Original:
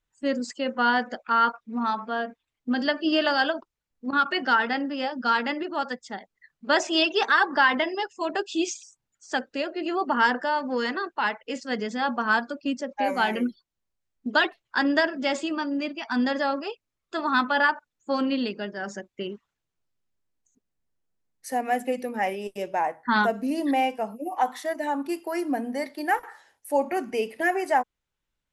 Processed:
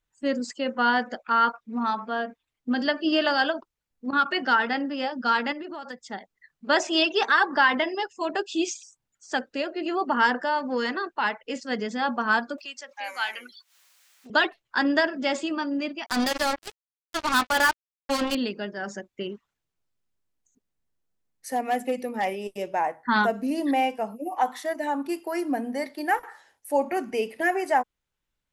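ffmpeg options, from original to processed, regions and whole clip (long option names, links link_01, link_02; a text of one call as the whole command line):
ffmpeg -i in.wav -filter_complex "[0:a]asettb=1/sr,asplit=3[link_01][link_02][link_03];[link_01]atrim=end=5.524[link_04];[link_02]atrim=start=5.52:end=6.02,asetpts=PTS-STARTPTS,afade=type=in:duration=0.004:curve=qsin,afade=type=out:start_time=0.496:duration=0.004:curve=qsin,acompressor=threshold=-32dB:ratio=16:attack=3.2:release=140:knee=1:detection=peak,asoftclip=type=hard:threshold=-26.5dB[link_05];[link_03]atrim=start=6.016[link_06];[link_04][link_05]acrossfade=duration=0.004:curve1=hsin:curve2=qsin[link_07];[link_07][link_06]acrossfade=duration=0.004:curve1=qsin:curve2=hsin,asettb=1/sr,asplit=3[link_08][link_09][link_10];[link_08]atrim=end=12.584[link_11];[link_09]atrim=start=12.58:end=14.3,asetpts=PTS-STARTPTS,afade=type=in:duration=0.004:curve=qsin,afade=type=out:start_time=1.716:duration=0.004:curve=qsin,highpass=1400,acompressor=mode=upward:threshold=-34dB:ratio=2.5:attack=3.2:release=140:knee=2.83:detection=peak[link_12];[link_10]atrim=start=14.296[link_13];[link_11][link_12]acrossfade=duration=0.004:curve1=hsin:curve2=qsin[link_14];[link_14][link_13]acrossfade=duration=0.004:curve1=qsin:curve2=hsin,asettb=1/sr,asplit=3[link_15][link_16][link_17];[link_15]atrim=end=16.064[link_18];[link_16]atrim=start=16.06:end=18.35,asetpts=PTS-STARTPTS,afade=type=in:duration=0.004:curve=qsin,afade=type=out:start_time=2.286:duration=0.004:curve=qsin,bass=frequency=250:gain=-4,treble=frequency=4000:gain=9,acrusher=bits=3:mix=0:aa=0.5[link_19];[link_17]atrim=start=18.346[link_20];[link_18][link_19]acrossfade=duration=0.004:curve1=hsin:curve2=qsin[link_21];[link_21][link_20]acrossfade=duration=0.004:curve1=qsin:curve2=hsin,asettb=1/sr,asplit=3[link_22][link_23][link_24];[link_22]atrim=end=21.554[link_25];[link_23]atrim=start=21.55:end=22.68,asetpts=PTS-STARTPTS,afade=type=in:duration=0.004:curve=qsin,afade=type=out:start_time=1.126:duration=0.004:curve=qsin,bandreject=frequency=1600:width=10,asoftclip=type=hard:threshold=-18.5dB[link_26];[link_24]atrim=start=22.676[link_27];[link_25][link_26]acrossfade=duration=0.004:curve1=hsin:curve2=qsin[link_28];[link_28][link_27]acrossfade=duration=0.004:curve1=qsin:curve2=hsin" out.wav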